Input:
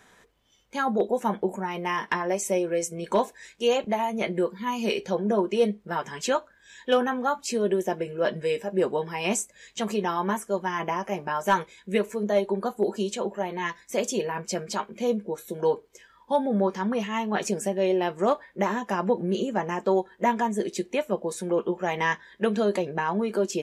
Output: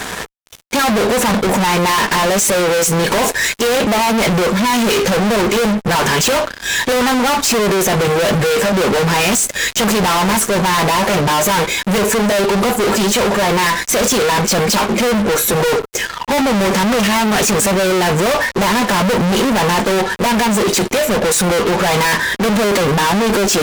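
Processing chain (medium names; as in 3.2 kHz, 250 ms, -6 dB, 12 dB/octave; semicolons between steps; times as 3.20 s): dynamic bell 340 Hz, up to -8 dB, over -44 dBFS, Q 5.5; fuzz box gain 52 dB, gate -58 dBFS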